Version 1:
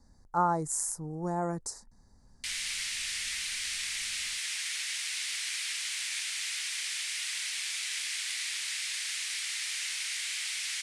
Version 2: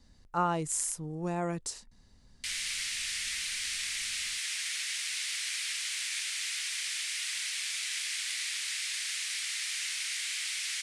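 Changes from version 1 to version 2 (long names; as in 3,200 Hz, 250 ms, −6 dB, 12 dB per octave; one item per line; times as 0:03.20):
speech: remove Butterworth band-reject 2,900 Hz, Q 0.85
master: add parametric band 850 Hz −5 dB 0.41 octaves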